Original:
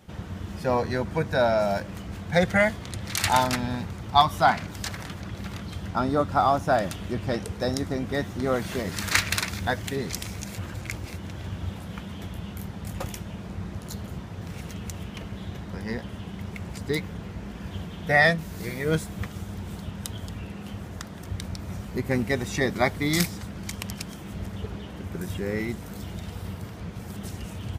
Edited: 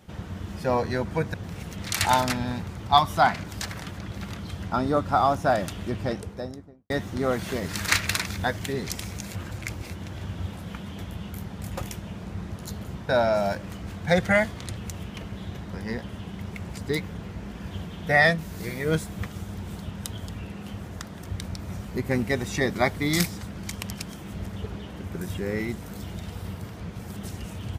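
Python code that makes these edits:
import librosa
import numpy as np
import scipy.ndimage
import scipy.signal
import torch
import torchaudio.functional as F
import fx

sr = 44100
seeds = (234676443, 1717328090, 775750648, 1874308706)

y = fx.studio_fade_out(x, sr, start_s=7.13, length_s=1.0)
y = fx.edit(y, sr, fx.swap(start_s=1.34, length_s=1.68, other_s=14.32, other_length_s=0.45), tone=tone)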